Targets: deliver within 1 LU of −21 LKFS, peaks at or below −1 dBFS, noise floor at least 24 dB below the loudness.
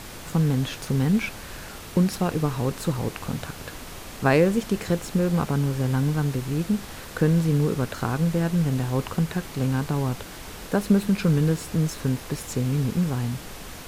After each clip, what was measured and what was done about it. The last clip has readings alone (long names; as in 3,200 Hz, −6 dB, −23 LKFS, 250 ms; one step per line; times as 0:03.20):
background noise floor −40 dBFS; target noise floor −49 dBFS; integrated loudness −25.0 LKFS; sample peak −7.0 dBFS; target loudness −21.0 LKFS
→ noise reduction from a noise print 9 dB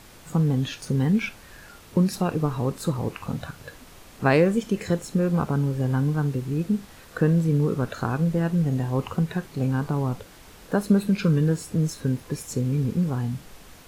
background noise floor −48 dBFS; target noise floor −49 dBFS
→ noise reduction from a noise print 6 dB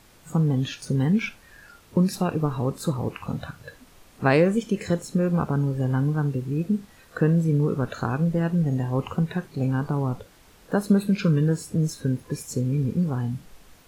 background noise floor −54 dBFS; integrated loudness −25.0 LKFS; sample peak −7.0 dBFS; target loudness −21.0 LKFS
→ level +4 dB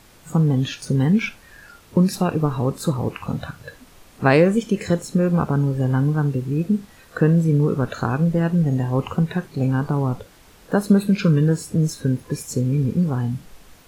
integrated loudness −21.0 LKFS; sample peak −3.0 dBFS; background noise floor −50 dBFS